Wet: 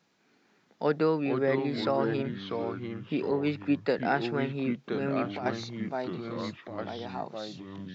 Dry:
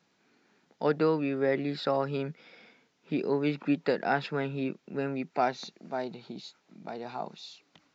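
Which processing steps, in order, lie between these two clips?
0:04.84–0:05.46: compressor whose output falls as the input rises −32 dBFS, ratio −1
delay with pitch and tempo change per echo 290 ms, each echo −3 semitones, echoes 2, each echo −6 dB
0:03.31–0:03.99: multiband upward and downward expander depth 40%

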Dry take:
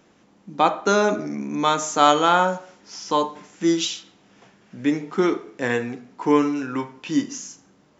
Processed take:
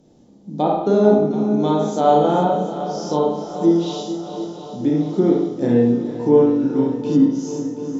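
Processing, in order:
flat-topped bell 1,700 Hz −13.5 dB
four-comb reverb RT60 0.71 s, combs from 26 ms, DRR −2 dB
treble cut that deepens with the level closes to 2,400 Hz, closed at −16 dBFS
low-shelf EQ 430 Hz +11 dB
on a send: feedback echo with a long and a short gap by turns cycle 730 ms, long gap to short 1.5 to 1, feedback 56%, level −12 dB
on the sum: level −4 dB

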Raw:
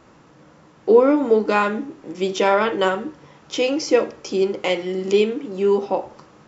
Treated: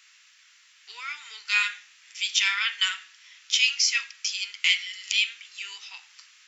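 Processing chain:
inverse Chebyshev high-pass filter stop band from 630 Hz, stop band 60 dB
level +7.5 dB

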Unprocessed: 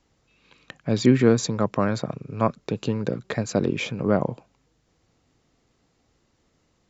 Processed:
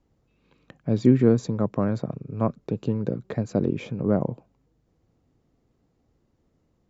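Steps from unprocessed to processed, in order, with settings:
tilt shelving filter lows +7.5 dB
level −6.5 dB

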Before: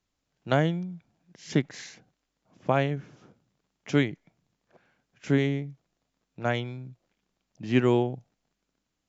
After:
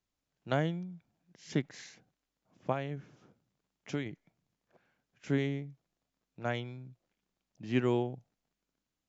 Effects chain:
0:02.72–0:04.06: downward compressor, threshold −24 dBFS, peak gain reduction 7.5 dB
level −7 dB

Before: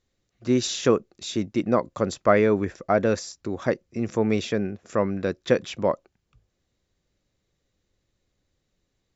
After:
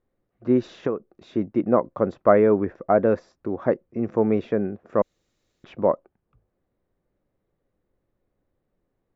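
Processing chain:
low-pass filter 1,100 Hz 12 dB per octave
0:05.02–0:05.64: fill with room tone
parametric band 64 Hz −8 dB 2.8 octaves
0:00.67–0:01.29: downward compressor 6 to 1, threshold −26 dBFS, peak gain reduction 10.5 dB
level +4 dB

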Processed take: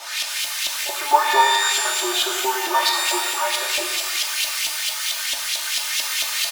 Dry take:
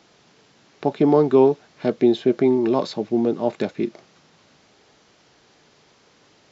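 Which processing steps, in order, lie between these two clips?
spike at every zero crossing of −11 dBFS
elliptic high-pass filter 360 Hz, stop band 40 dB
single-tap delay 317 ms −12 dB
speech leveller 2 s
0:00.96–0:03.47: flat-topped bell 1,100 Hz +9 dB 1 octave
auto-filter band-pass saw up 4.5 Hz 670–3,400 Hz
high-shelf EQ 2,400 Hz +9.5 dB
comb filter 3.3 ms, depth 95%
reverb with rising layers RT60 1.2 s, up +12 semitones, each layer −2 dB, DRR 3 dB

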